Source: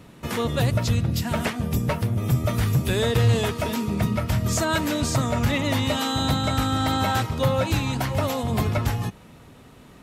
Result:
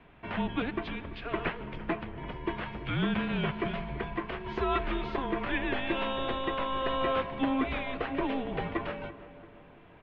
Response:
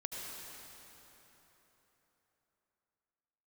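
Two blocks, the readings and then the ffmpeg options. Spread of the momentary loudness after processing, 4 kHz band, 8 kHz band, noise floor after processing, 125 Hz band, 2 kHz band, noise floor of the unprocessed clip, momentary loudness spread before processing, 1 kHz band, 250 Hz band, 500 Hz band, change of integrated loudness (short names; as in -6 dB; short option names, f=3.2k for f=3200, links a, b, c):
9 LU, -10.5 dB, under -40 dB, -54 dBFS, -17.5 dB, -5.0 dB, -48 dBFS, 4 LU, -5.5 dB, -7.5 dB, -6.5 dB, -9.0 dB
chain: -filter_complex "[0:a]asplit=2[a][b];[1:a]atrim=start_sample=2205[c];[b][c]afir=irnorm=-1:irlink=0,volume=-18dB[d];[a][d]amix=inputs=2:normalize=0,highpass=f=310:t=q:w=0.5412,highpass=f=310:t=q:w=1.307,lowpass=f=3.3k:t=q:w=0.5176,lowpass=f=3.3k:t=q:w=0.7071,lowpass=f=3.3k:t=q:w=1.932,afreqshift=-260,asplit=2[e][f];[f]adelay=339,lowpass=f=1.5k:p=1,volume=-15dB,asplit=2[g][h];[h]adelay=339,lowpass=f=1.5k:p=1,volume=0.54,asplit=2[i][j];[j]adelay=339,lowpass=f=1.5k:p=1,volume=0.54,asplit=2[k][l];[l]adelay=339,lowpass=f=1.5k:p=1,volume=0.54,asplit=2[m][n];[n]adelay=339,lowpass=f=1.5k:p=1,volume=0.54[o];[e][g][i][k][m][o]amix=inputs=6:normalize=0,volume=-4.5dB"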